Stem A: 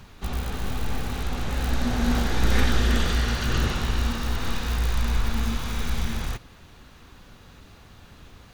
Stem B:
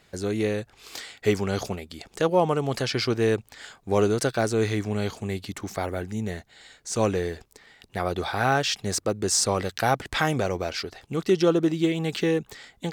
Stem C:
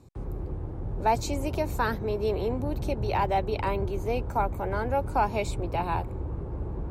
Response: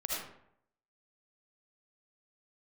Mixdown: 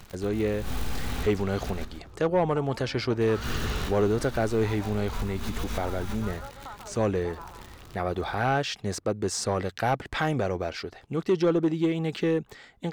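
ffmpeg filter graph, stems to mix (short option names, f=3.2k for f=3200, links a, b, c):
-filter_complex "[0:a]bandreject=f=59.1:t=h:w=4,bandreject=f=118.2:t=h:w=4,bandreject=f=177.3:t=h:w=4,bandreject=f=236.4:t=h:w=4,bandreject=f=295.5:t=h:w=4,bandreject=f=354.6:t=h:w=4,bandreject=f=413.7:t=h:w=4,bandreject=f=472.8:t=h:w=4,bandreject=f=531.9:t=h:w=4,bandreject=f=591:t=h:w=4,bandreject=f=650.1:t=h:w=4,bandreject=f=709.2:t=h:w=4,bandreject=f=768.3:t=h:w=4,bandreject=f=827.4:t=h:w=4,bandreject=f=886.5:t=h:w=4,bandreject=f=945.6:t=h:w=4,bandreject=f=1.0047k:t=h:w=4,bandreject=f=1.0638k:t=h:w=4,acompressor=threshold=-24dB:ratio=6,acrusher=bits=8:dc=4:mix=0:aa=0.000001,volume=-0.5dB,asplit=3[a][b][c];[a]atrim=end=1.85,asetpts=PTS-STARTPTS,afade=t=out:st=1.846:d=0.004:c=hsin[d];[b]atrim=start=1.85:end=3.21,asetpts=PTS-STARTPTS,volume=0[e];[c]atrim=start=3.21,asetpts=PTS-STARTPTS,afade=t=in:d=0.004:c=hsin[f];[d][e][f]concat=n=3:v=0:a=1,asplit=2[g][h];[h]volume=-15.5dB[i];[1:a]highshelf=f=3.4k:g=-10.5,asoftclip=type=tanh:threshold=-14.5dB,volume=-0.5dB,asplit=2[j][k];[2:a]lowpass=f=1.3k:t=q:w=8.1,acompressor=threshold=-22dB:ratio=6,adelay=1500,volume=-17dB,asplit=2[l][m];[m]volume=-6.5dB[n];[k]apad=whole_len=376200[o];[g][o]sidechaincompress=threshold=-39dB:ratio=8:attack=33:release=113[p];[i][n]amix=inputs=2:normalize=0,aecho=0:1:141|282|423|564:1|0.26|0.0676|0.0176[q];[p][j][l][q]amix=inputs=4:normalize=0"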